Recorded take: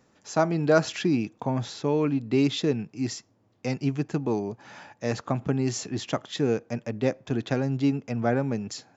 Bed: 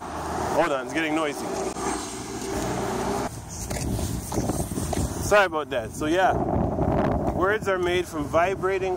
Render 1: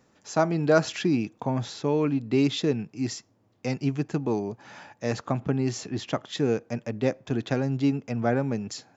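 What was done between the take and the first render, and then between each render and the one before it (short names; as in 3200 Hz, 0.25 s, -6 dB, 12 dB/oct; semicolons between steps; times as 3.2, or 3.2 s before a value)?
5.4–6.27 air absorption 55 m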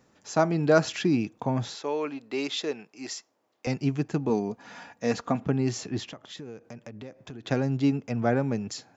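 1.75–3.67 HPF 500 Hz; 4.29–5.45 comb 4.2 ms, depth 52%; 6.08–7.45 compressor 5:1, threshold -39 dBFS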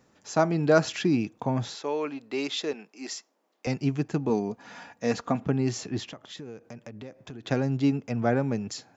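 2.73–3.66 steep high-pass 170 Hz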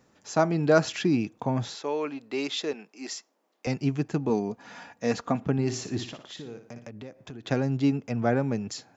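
5.52–6.9 flutter echo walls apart 10.1 m, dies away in 0.39 s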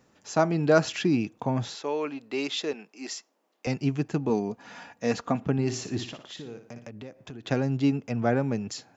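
bell 2800 Hz +2.5 dB 0.25 oct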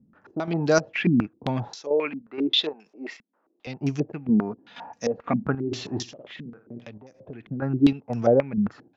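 chopper 2.1 Hz, depth 60%, duty 65%; stepped low-pass 7.5 Hz 210–5800 Hz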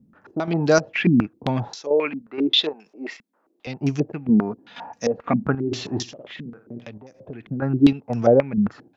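gain +3.5 dB; limiter -2 dBFS, peak gain reduction 1.5 dB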